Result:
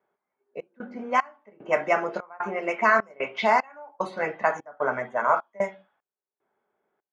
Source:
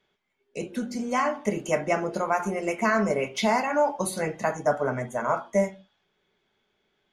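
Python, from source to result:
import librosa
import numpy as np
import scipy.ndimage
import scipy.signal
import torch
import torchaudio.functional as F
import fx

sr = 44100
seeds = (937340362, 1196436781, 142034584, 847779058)

y = fx.bandpass_q(x, sr, hz=1300.0, q=0.77)
y = fx.step_gate(y, sr, bpm=75, pattern='xxx.xx..xxx.', floor_db=-24.0, edge_ms=4.5)
y = fx.env_lowpass(y, sr, base_hz=900.0, full_db=-25.5)
y = F.gain(torch.from_numpy(y), 6.0).numpy()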